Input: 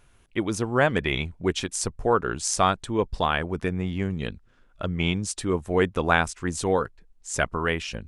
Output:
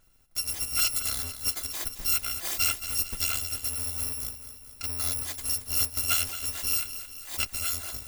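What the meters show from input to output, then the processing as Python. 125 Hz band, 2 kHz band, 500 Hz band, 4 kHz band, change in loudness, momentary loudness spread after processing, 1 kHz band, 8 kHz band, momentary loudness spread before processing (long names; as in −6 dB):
−13.0 dB, −9.0 dB, −24.5 dB, +2.0 dB, −1.5 dB, 9 LU, −16.0 dB, +4.0 dB, 9 LU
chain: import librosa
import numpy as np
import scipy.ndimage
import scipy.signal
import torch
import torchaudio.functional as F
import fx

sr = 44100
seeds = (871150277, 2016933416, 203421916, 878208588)

y = fx.bit_reversed(x, sr, seeds[0], block=256)
y = fx.echo_feedback(y, sr, ms=222, feedback_pct=58, wet_db=-11.5)
y = F.gain(torch.from_numpy(y), -5.0).numpy()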